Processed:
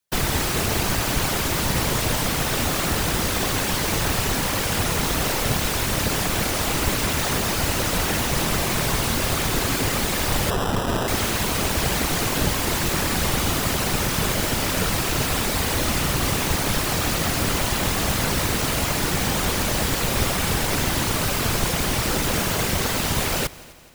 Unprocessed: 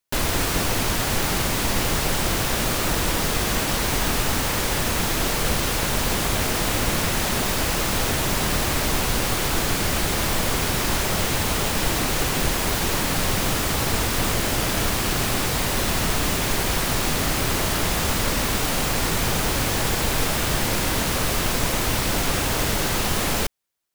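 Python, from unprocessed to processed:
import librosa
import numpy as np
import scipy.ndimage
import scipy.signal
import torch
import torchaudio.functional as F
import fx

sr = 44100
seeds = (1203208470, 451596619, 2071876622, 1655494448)

y = fx.whisperise(x, sr, seeds[0])
y = fx.echo_heads(y, sr, ms=85, heads='second and third', feedback_pct=52, wet_db=-22.5)
y = fx.sample_hold(y, sr, seeds[1], rate_hz=2200.0, jitter_pct=0, at=(10.5, 11.08))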